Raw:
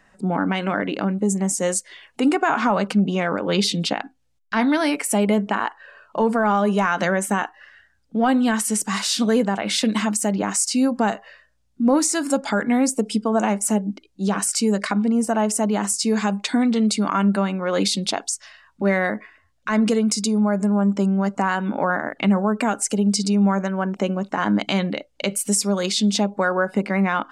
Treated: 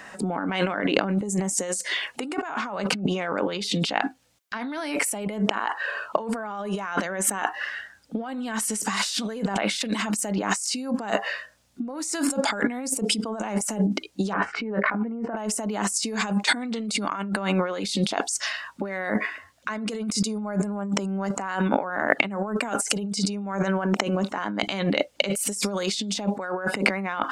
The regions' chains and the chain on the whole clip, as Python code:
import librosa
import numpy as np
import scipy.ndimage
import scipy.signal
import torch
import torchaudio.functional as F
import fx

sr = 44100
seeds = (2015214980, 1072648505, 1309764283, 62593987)

y = fx.chain(x, sr, fx.lowpass(hz=2000.0, slope=24),
    fx.doubler(ms=17.0, db=-10), at=(14.33, 15.37))
y = fx.highpass(y, sr, hz=340.0, slope=6)
y = fx.over_compress(y, sr, threshold_db=-34.0, ratio=-1.0)
y = y * 10.0 ** (6.5 / 20.0)